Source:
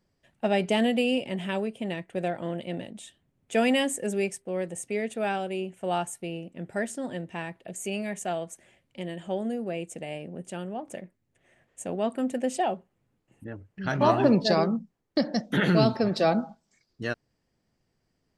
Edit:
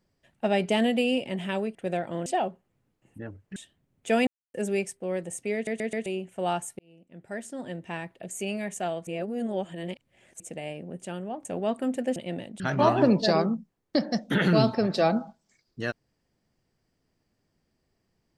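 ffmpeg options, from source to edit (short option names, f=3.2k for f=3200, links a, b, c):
-filter_complex "[0:a]asplit=16[a][b][c][d][e][f][g][h][i][j][k][l][m][n][o][p];[a]atrim=end=1.752[q];[b]atrim=start=2.058:end=2.572[r];[c]atrim=start=12.518:end=13.822[s];[d]atrim=start=3.008:end=3.72,asetpts=PTS-STARTPTS,afade=t=out:st=0.708:d=0.004:c=hsin[t];[e]atrim=start=3.72:end=3.99,asetpts=PTS-STARTPTS,volume=0[u];[f]atrim=start=3.99:end=5.122,asetpts=PTS-STARTPTS,afade=t=in:d=0.004:c=hsin[v];[g]atrim=start=4.988:end=5.122[w];[h]atrim=start=4.988:end=5.122[x];[i]atrim=start=4.988:end=5.122[y];[j]atrim=start=5.508:end=6.24,asetpts=PTS-STARTPTS,afade=t=out:st=0.728:d=0.004:c=hsin[z];[k]atrim=start=6.24:end=8.522,asetpts=PTS-STARTPTS,afade=t=in:d=1.16[aa];[l]atrim=start=8.518:end=9.852,asetpts=PTS-STARTPTS,areverse[ab];[m]atrim=start=9.848:end=10.902[ac];[n]atrim=start=11.808:end=12.522[ad];[o]atrim=start=2.568:end=3.012[ae];[p]atrim=start=13.818[af];[q][r]acrossfade=d=0.004:c1=hsin:c2=hsin[ag];[ag][s]acrossfade=d=0.004:c1=hsin:c2=hsin[ah];[t][u][v]concat=n=3:v=0:a=1[ai];[ah][ai]acrossfade=d=0.004:c1=hsin:c2=hsin[aj];[aj][w]acrossfade=d=0.004:c1=hsin:c2=hsin[ak];[ak][x]acrossfade=d=0.004:c1=hsin:c2=hsin[al];[al][y]acrossfade=d=0.004:c1=hsin:c2=hsin[am];[z][aa]concat=n=2:v=0:a=1[an];[am][an]acrossfade=d=0.004:c1=hsin:c2=hsin[ao];[ao][ab]acrossfade=d=0.004:c1=hsin:c2=hsin[ap];[ap][ac]acrossfade=d=0.004:c1=hsin:c2=hsin[aq];[aq][ad]acrossfade=d=0.004:c1=hsin:c2=hsin[ar];[ar][ae]acrossfade=d=0.004:c1=hsin:c2=hsin[as];[as][af]acrossfade=d=0.004:c1=hsin:c2=hsin"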